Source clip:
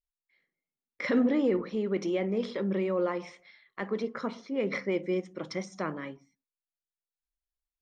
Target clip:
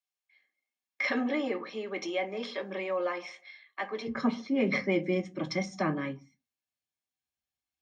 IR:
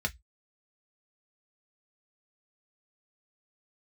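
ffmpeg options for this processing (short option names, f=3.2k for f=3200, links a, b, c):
-filter_complex "[0:a]asetnsamples=n=441:p=0,asendcmd='4.07 highpass f 98',highpass=580[a];[1:a]atrim=start_sample=2205,asetrate=52920,aresample=44100[b];[a][b]afir=irnorm=-1:irlink=0"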